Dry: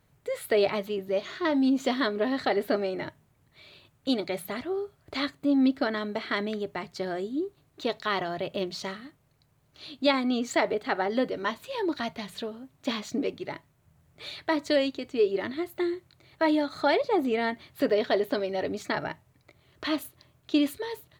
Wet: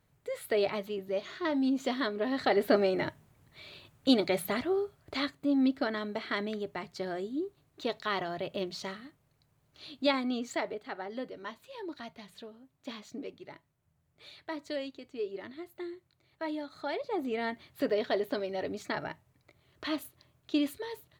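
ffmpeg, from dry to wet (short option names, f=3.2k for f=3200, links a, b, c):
-af "volume=9.5dB,afade=t=in:st=2.24:d=0.57:silence=0.421697,afade=t=out:st=4.53:d=0.81:silence=0.473151,afade=t=out:st=10.07:d=0.79:silence=0.398107,afade=t=in:st=16.88:d=0.65:silence=0.446684"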